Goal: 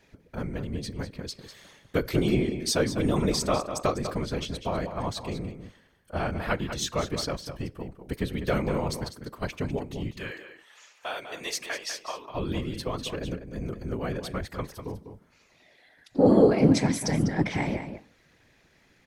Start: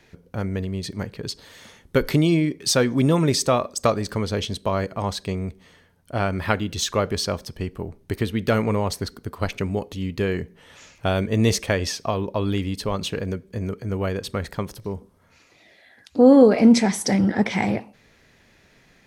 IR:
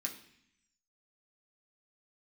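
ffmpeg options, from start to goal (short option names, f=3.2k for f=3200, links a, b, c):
-filter_complex "[0:a]asettb=1/sr,asplit=3[a][b][c];[a]atrim=end=10.114[d];[b]atrim=start=10.11:end=12.3,asetpts=PTS-STARTPTS,afade=t=in:d=0.004:c=qsin,afade=t=out:st=2.186:d=0.004:c=qsin,highpass=810[e];[c]atrim=start=12.296[f];[d][e]acrossfade=d=0.004:c1=hsin:c2=qsin[g];[g][f]acrossfade=d=0.004:c1=qsin:c2=hsin,afftfilt=real='hypot(re,im)*cos(2*PI*random(0))':imag='hypot(re,im)*sin(2*PI*random(1))':win_size=512:overlap=0.75,asplit=2[h][i];[i]adelay=198.3,volume=-9dB,highshelf=f=4k:g=-4.46[j];[h][j]amix=inputs=2:normalize=0"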